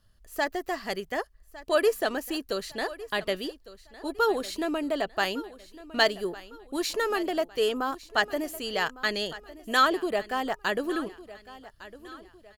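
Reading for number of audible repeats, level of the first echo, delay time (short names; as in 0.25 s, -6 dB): 3, -17.5 dB, 1.156 s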